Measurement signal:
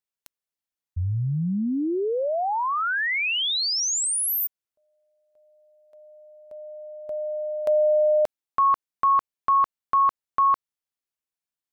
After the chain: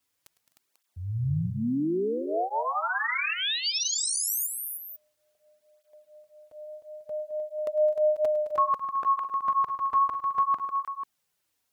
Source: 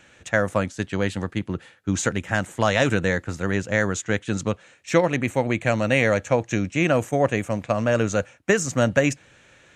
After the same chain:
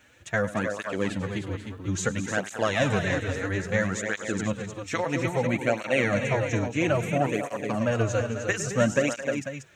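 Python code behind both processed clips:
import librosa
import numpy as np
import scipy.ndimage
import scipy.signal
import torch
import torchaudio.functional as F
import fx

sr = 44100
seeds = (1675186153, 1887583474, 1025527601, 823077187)

y = fx.echo_multitap(x, sr, ms=(105, 214, 256, 307, 493), db=(-16.0, -13.0, -19.0, -7.0, -11.5))
y = fx.quant_dither(y, sr, seeds[0], bits=12, dither='triangular')
y = fx.flanger_cancel(y, sr, hz=0.6, depth_ms=6.1)
y = y * librosa.db_to_amplitude(-2.0)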